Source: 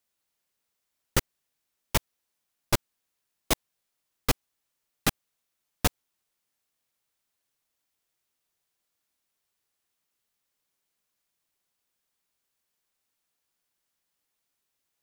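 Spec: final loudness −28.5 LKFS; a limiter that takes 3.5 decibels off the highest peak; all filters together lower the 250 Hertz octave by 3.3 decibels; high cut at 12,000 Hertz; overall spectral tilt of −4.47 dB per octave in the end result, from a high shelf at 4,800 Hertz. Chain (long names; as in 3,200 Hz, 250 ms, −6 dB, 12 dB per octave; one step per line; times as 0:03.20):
low-pass filter 12,000 Hz
parametric band 250 Hz −4.5 dB
high-shelf EQ 4,800 Hz −7.5 dB
level +6.5 dB
brickwall limiter −7 dBFS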